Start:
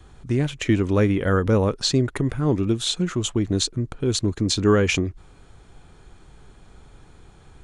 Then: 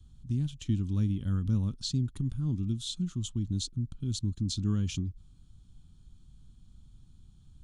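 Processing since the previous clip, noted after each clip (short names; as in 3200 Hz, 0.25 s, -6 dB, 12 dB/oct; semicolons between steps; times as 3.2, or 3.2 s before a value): EQ curve 110 Hz 0 dB, 240 Hz -3 dB, 470 Hz -28 dB, 1200 Hz -19 dB, 2100 Hz -26 dB, 3200 Hz -7 dB; gain -5.5 dB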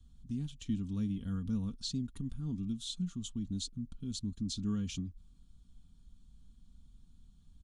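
comb 4.3 ms, depth 57%; gain -5.5 dB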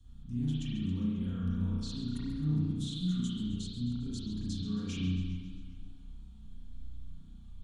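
limiter -36.5 dBFS, peak gain reduction 11.5 dB; reverb RT60 1.4 s, pre-delay 33 ms, DRR -9 dB; warbling echo 0.134 s, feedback 64%, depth 156 cents, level -14 dB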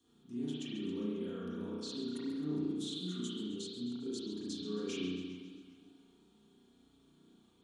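resonant high-pass 380 Hz, resonance Q 4.6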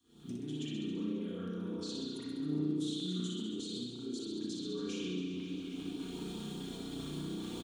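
recorder AGC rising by 54 dB/s; LFO notch saw up 5 Hz 400–2400 Hz; on a send: reverse bouncing-ball echo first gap 60 ms, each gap 1.1×, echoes 5; on the sum: gain -1.5 dB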